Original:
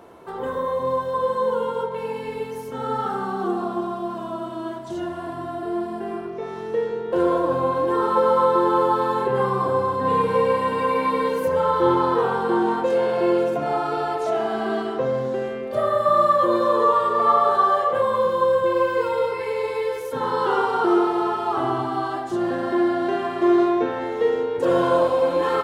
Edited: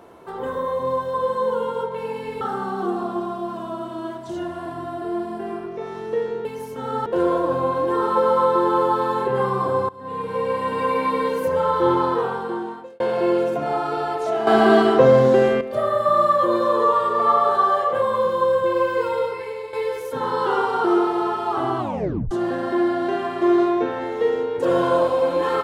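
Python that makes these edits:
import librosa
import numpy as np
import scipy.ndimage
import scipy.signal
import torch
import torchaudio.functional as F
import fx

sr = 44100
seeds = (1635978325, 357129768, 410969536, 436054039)

y = fx.edit(x, sr, fx.move(start_s=2.41, length_s=0.61, to_s=7.06),
    fx.fade_in_from(start_s=9.89, length_s=0.96, floor_db=-21.0),
    fx.fade_out_span(start_s=12.02, length_s=0.98),
    fx.clip_gain(start_s=14.47, length_s=1.14, db=10.5),
    fx.fade_out_to(start_s=19.15, length_s=0.58, floor_db=-10.5),
    fx.tape_stop(start_s=21.79, length_s=0.52), tone=tone)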